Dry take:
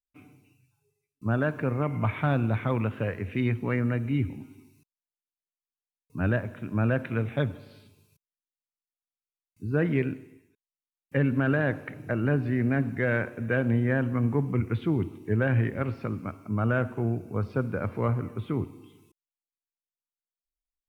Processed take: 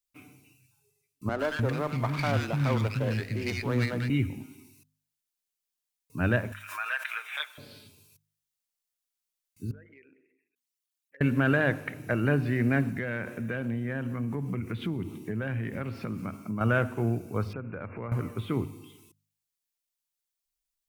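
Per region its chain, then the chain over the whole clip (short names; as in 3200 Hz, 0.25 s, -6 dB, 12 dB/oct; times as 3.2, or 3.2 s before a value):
1.29–4.1 three bands offset in time mids, highs, lows 0.1/0.3 s, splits 280/1500 Hz + running maximum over 5 samples
6.52–7.58 HPF 1100 Hz 24 dB/oct + comb 6.4 ms, depth 56% + backwards sustainer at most 110 dB/s
9.71–11.21 formant sharpening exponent 2 + HPF 1000 Hz + compressor, threshold -54 dBFS
12.9–16.61 compressor 3:1, threshold -33 dBFS + bell 190 Hz +6.5 dB 0.76 oct
17.53–18.12 brick-wall FIR low-pass 2800 Hz + compressor 4:1, threshold -35 dBFS
whole clip: high shelf 2500 Hz +10.5 dB; de-hum 50.75 Hz, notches 5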